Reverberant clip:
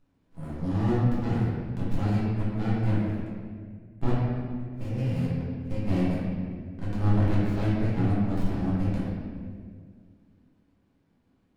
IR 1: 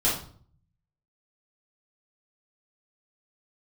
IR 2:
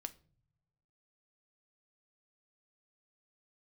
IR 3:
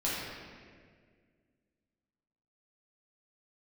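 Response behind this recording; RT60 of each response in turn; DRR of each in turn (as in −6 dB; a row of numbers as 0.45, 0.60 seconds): 3; 0.50 s, non-exponential decay, 1.9 s; −8.5, 9.5, −8.5 decibels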